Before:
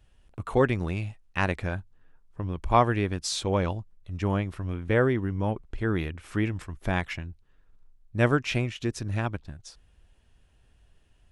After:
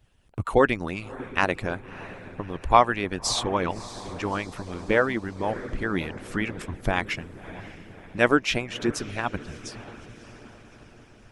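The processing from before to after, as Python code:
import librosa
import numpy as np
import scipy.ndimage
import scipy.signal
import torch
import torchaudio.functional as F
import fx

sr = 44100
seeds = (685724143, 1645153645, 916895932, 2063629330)

y = fx.echo_diffused(x, sr, ms=614, feedback_pct=55, wet_db=-13)
y = fx.hpss(y, sr, part='harmonic', gain_db=-18)
y = y * librosa.db_to_amplitude(6.5)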